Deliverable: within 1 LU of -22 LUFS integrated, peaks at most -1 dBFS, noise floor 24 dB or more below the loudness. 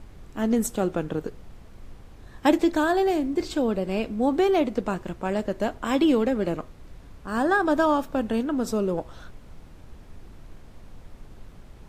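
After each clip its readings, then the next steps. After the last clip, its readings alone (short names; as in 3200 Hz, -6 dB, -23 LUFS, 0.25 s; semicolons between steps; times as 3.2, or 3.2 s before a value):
noise floor -47 dBFS; noise floor target -49 dBFS; loudness -25.0 LUFS; peak -7.5 dBFS; loudness target -22.0 LUFS
-> noise print and reduce 6 dB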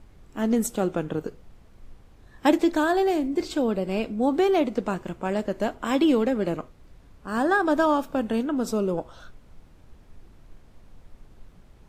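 noise floor -53 dBFS; loudness -25.0 LUFS; peak -7.5 dBFS; loudness target -22.0 LUFS
-> gain +3 dB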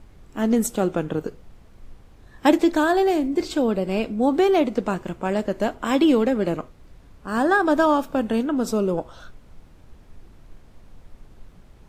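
loudness -22.0 LUFS; peak -4.5 dBFS; noise floor -50 dBFS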